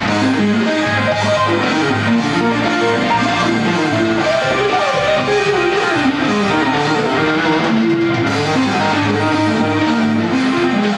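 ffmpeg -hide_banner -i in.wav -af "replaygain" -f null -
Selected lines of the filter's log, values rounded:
track_gain = -1.8 dB
track_peak = 0.469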